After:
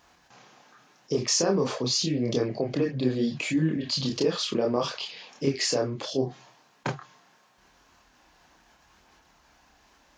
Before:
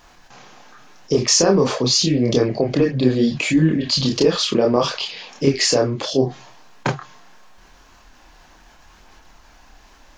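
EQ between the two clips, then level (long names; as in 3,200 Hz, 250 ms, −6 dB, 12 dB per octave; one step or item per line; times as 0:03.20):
high-pass filter 69 Hz
−9.0 dB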